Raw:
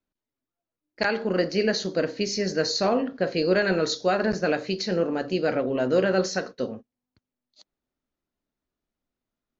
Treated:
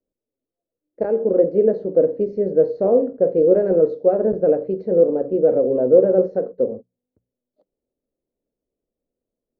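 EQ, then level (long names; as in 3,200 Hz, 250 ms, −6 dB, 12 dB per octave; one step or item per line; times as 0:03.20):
low-pass with resonance 500 Hz, resonance Q 4
mains-hum notches 60/120/180 Hz
0.0 dB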